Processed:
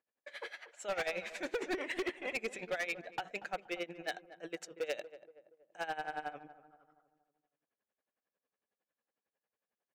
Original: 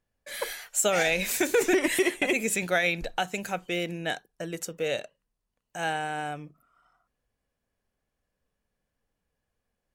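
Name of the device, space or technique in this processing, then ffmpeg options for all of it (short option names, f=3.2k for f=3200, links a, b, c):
helicopter radio: -filter_complex "[0:a]highpass=350,lowpass=2.9k,aeval=exprs='val(0)*pow(10,-19*(0.5-0.5*cos(2*PI*11*n/s))/20)':c=same,asoftclip=type=hard:threshold=-28.5dB,asettb=1/sr,asplit=3[a][b][c];[a]atrim=end=4.084[d];[b]atrim=start=4.08:end=5.85,asetpts=PTS-STARTPTS,afade=t=in:d=0.004:c=qsin,afade=t=out:st=1.766:d=0.004:c=qsin,highshelf=f=4.5k:g=8[e];[c]atrim=start=5.846[f];[d][e]acrossfade=d=0.004:c1=hsin:c2=qsin[g];[g][f]acrossfade=d=0.004:c1=qsin:c2=hsin,asplit=2[h][i];[i]adelay=236,lowpass=f=1.2k:p=1,volume=-14dB,asplit=2[j][k];[k]adelay=236,lowpass=f=1.2k:p=1,volume=0.49,asplit=2[l][m];[m]adelay=236,lowpass=f=1.2k:p=1,volume=0.49,asplit=2[n][o];[o]adelay=236,lowpass=f=1.2k:p=1,volume=0.49,asplit=2[p][q];[q]adelay=236,lowpass=f=1.2k:p=1,volume=0.49[r];[h][j][l][n][p][r]amix=inputs=6:normalize=0,volume=-2dB"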